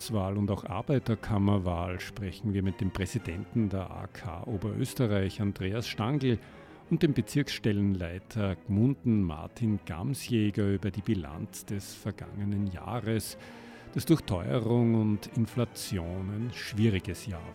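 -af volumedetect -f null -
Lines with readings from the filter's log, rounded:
mean_volume: -30.2 dB
max_volume: -11.9 dB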